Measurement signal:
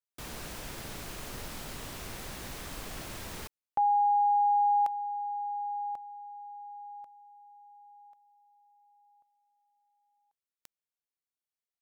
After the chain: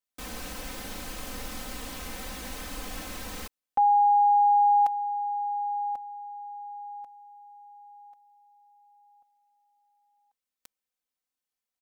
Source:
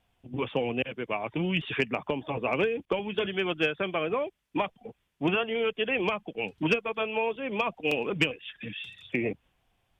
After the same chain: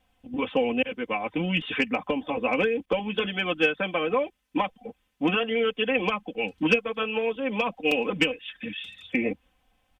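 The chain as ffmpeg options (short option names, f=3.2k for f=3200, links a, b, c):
-af "aecho=1:1:3.9:0.83,volume=1dB"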